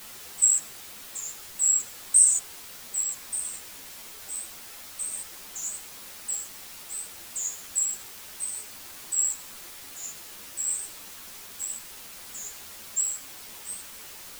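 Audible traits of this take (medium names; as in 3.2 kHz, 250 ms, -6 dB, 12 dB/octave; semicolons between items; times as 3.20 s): tremolo triangle 0.57 Hz, depth 55%; a quantiser's noise floor 8-bit, dither triangular; a shimmering, thickened sound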